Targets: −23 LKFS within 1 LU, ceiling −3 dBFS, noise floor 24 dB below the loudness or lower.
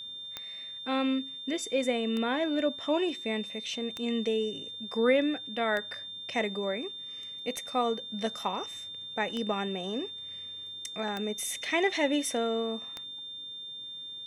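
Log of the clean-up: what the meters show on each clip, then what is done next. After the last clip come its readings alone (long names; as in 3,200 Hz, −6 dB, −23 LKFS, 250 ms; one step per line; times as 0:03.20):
number of clicks 8; interfering tone 3,600 Hz; level of the tone −39 dBFS; integrated loudness −31.5 LKFS; sample peak −12.5 dBFS; target loudness −23.0 LKFS
→ click removal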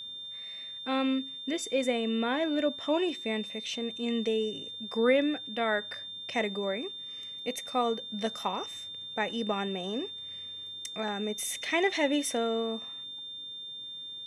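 number of clicks 0; interfering tone 3,600 Hz; level of the tone −39 dBFS
→ notch filter 3,600 Hz, Q 30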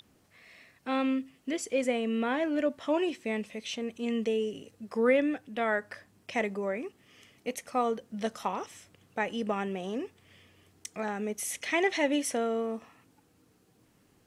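interfering tone none found; integrated loudness −31.5 LKFS; sample peak −13.0 dBFS; target loudness −23.0 LKFS
→ level +8.5 dB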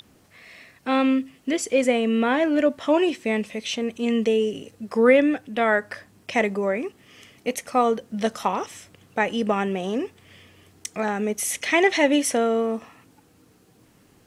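integrated loudness −23.0 LKFS; sample peak −4.5 dBFS; background noise floor −58 dBFS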